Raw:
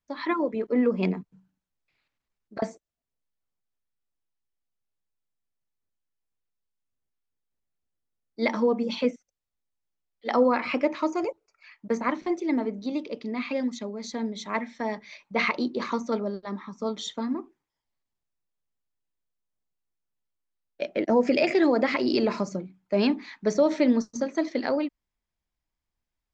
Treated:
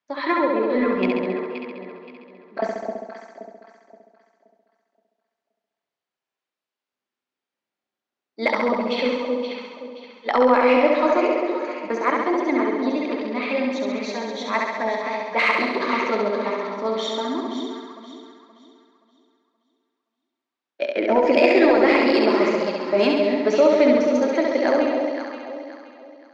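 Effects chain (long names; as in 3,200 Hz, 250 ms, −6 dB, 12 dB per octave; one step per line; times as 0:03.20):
band-pass filter 350–4,000 Hz
delay that swaps between a low-pass and a high-pass 262 ms, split 860 Hz, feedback 56%, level −4 dB
in parallel at −11 dB: soft clipping −25 dBFS, distortion −9 dB
on the sum: notch filter 470 Hz, Q 14
flutter between parallel walls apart 11.6 metres, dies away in 1.2 s
level +4.5 dB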